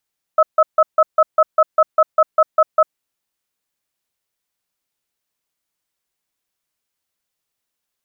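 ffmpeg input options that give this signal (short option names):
-f lavfi -i "aevalsrc='0.299*(sin(2*PI*628*t)+sin(2*PI*1290*t))*clip(min(mod(t,0.2),0.05-mod(t,0.2))/0.005,0,1)':d=2.59:s=44100"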